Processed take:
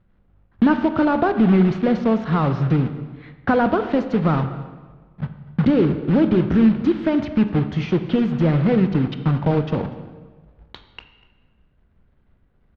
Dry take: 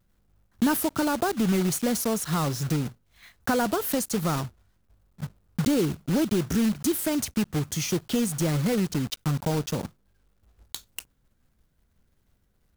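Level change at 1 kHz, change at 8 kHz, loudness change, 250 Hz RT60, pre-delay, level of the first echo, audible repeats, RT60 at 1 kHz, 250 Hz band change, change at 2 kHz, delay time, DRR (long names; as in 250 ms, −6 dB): +7.0 dB, below −25 dB, +7.0 dB, 1.5 s, 20 ms, −21.0 dB, 1, 1.4 s, +8.0 dB, +5.5 dB, 244 ms, 9.0 dB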